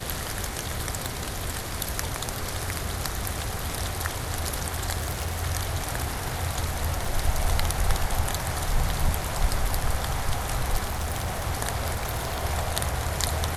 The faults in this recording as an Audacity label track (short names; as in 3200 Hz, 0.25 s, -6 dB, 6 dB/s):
1.060000	1.060000	pop
4.970000	5.410000	clipped -24 dBFS
7.050000	7.050000	gap 3.6 ms
10.870000	11.450000	clipped -24 dBFS
11.940000	12.430000	clipped -24 dBFS